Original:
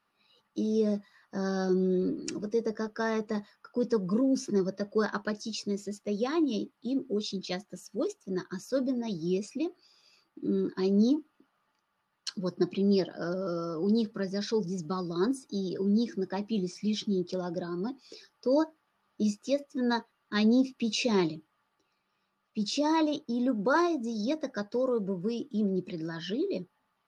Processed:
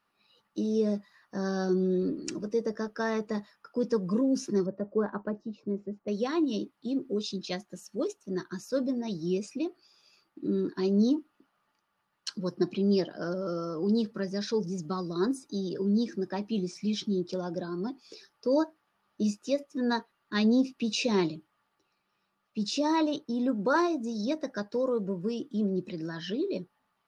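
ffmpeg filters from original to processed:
ffmpeg -i in.wav -filter_complex "[0:a]asettb=1/sr,asplit=3[link_01][link_02][link_03];[link_01]atrim=end=4.664[link_04];[link_02]atrim=start=4.66:end=6.08,asetpts=PTS-STARTPTS,afade=type=in:duration=0.004:curve=qsin,afade=type=out:start_time=1.416:duration=0.004:curve=qsin,lowpass=1000[link_05];[link_03]atrim=start=6.076[link_06];[link_04][link_05]acrossfade=duration=0.004:curve1=hsin:curve2=qsin[link_07];[link_07][link_06]acrossfade=duration=0.004:curve1=qsin:curve2=hsin" out.wav

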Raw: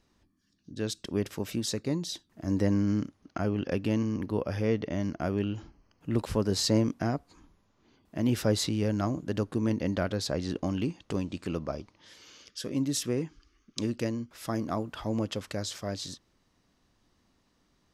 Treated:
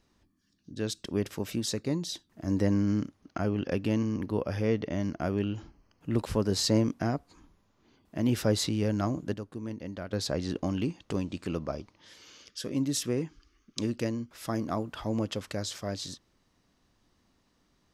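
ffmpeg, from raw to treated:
ffmpeg -i in.wav -filter_complex "[0:a]asplit=3[link_01][link_02][link_03];[link_01]atrim=end=9.342[link_04];[link_02]atrim=start=9.338:end=10.132,asetpts=PTS-STARTPTS,volume=-9.5dB[link_05];[link_03]atrim=start=10.128[link_06];[link_04][link_05]acrossfade=duration=0.004:curve1=hsin:curve2=hsin[link_07];[link_07][link_06]acrossfade=duration=0.004:curve1=hsin:curve2=hsin" out.wav

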